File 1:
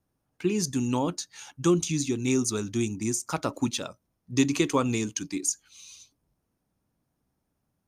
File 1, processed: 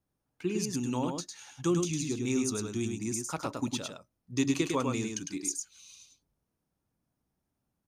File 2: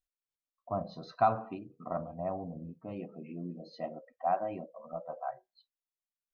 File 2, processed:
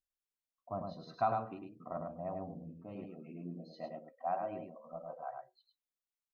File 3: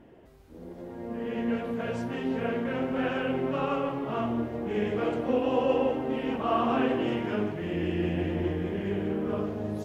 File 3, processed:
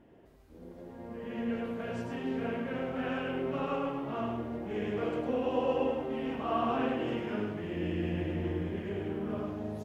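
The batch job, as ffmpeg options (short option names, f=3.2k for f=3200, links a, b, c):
-af "aecho=1:1:104:0.596,volume=-6dB"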